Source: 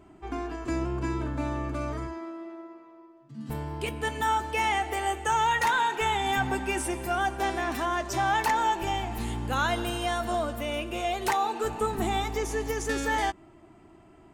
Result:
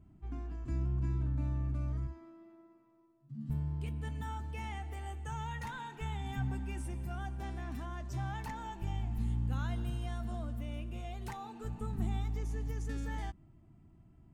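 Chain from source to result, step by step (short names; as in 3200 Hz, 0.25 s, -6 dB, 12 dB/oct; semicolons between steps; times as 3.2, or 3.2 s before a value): EQ curve 150 Hz 0 dB, 240 Hz -7 dB, 370 Hz -20 dB; gain +1 dB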